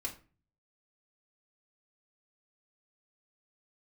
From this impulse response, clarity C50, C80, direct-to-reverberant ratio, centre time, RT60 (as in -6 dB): 12.0 dB, 17.5 dB, -1.0 dB, 14 ms, 0.35 s